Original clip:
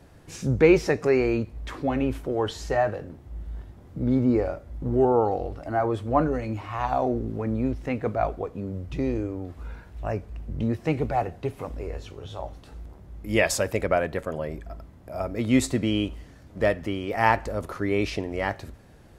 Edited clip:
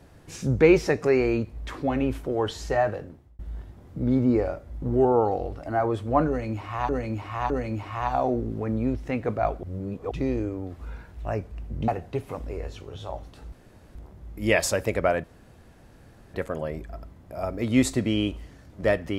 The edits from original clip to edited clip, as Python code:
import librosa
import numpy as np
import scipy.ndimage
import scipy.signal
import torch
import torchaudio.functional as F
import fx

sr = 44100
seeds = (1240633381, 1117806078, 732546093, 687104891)

y = fx.edit(x, sr, fx.fade_out_span(start_s=2.98, length_s=0.41),
    fx.repeat(start_s=6.28, length_s=0.61, count=3),
    fx.reverse_span(start_s=8.41, length_s=0.48),
    fx.cut(start_s=10.66, length_s=0.52),
    fx.insert_room_tone(at_s=12.82, length_s=0.43),
    fx.insert_room_tone(at_s=14.11, length_s=1.1), tone=tone)